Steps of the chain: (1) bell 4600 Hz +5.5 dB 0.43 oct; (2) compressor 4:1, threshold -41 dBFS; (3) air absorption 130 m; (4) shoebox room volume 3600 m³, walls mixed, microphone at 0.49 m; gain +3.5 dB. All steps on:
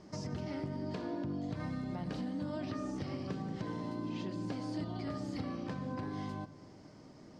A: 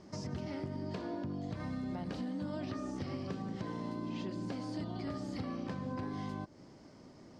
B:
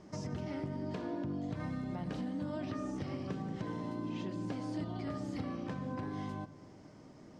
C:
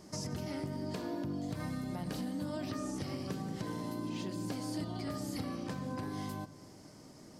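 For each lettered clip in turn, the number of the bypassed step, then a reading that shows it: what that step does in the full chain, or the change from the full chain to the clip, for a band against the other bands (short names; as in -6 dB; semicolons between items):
4, echo-to-direct -12.5 dB to none; 1, 4 kHz band -2.5 dB; 3, 8 kHz band +10.0 dB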